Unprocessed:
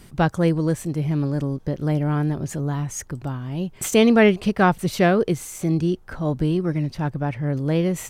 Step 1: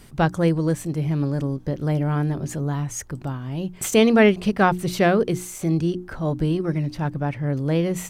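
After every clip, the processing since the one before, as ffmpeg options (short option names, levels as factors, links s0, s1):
-af "bandreject=f=60:t=h:w=6,bandreject=f=120:t=h:w=6,bandreject=f=180:t=h:w=6,bandreject=f=240:t=h:w=6,bandreject=f=300:t=h:w=6,bandreject=f=360:t=h:w=6"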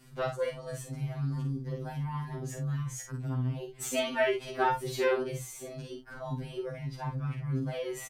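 -filter_complex "[0:a]asplit=2[s0][s1];[s1]aecho=0:1:48|79:0.531|0.15[s2];[s0][s2]amix=inputs=2:normalize=0,afftfilt=real='re*2.45*eq(mod(b,6),0)':imag='im*2.45*eq(mod(b,6),0)':win_size=2048:overlap=0.75,volume=0.422"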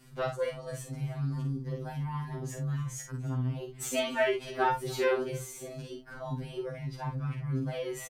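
-af "aecho=1:1:290:0.0668"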